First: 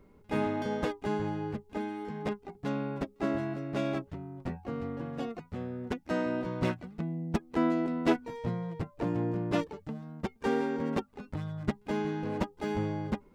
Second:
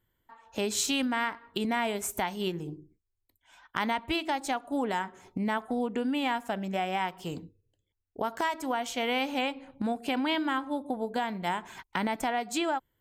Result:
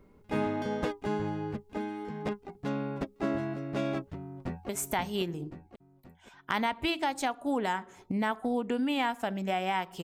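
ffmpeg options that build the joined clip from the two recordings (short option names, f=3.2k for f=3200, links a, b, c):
-filter_complex "[0:a]apad=whole_dur=10.03,atrim=end=10.03,atrim=end=4.692[a];[1:a]atrim=start=1.948:end=7.29[b];[a][b]acrossfade=d=0.004:c1=hsin:c2=hsin,asplit=2[c][d];[d]afade=t=in:st=4.21:d=0.01,afade=t=out:st=4.69:d=0.01,aecho=0:1:530|1060|1590|2120|2650|3180:0.501187|0.250594|0.125297|0.0626484|0.0313242|0.0156621[e];[c][e]amix=inputs=2:normalize=0"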